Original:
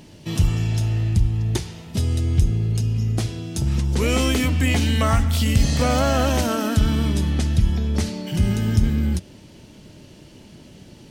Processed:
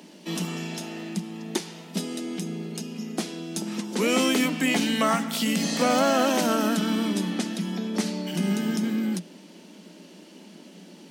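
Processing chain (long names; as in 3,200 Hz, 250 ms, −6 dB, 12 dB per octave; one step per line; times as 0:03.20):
Chebyshev high-pass filter 170 Hz, order 8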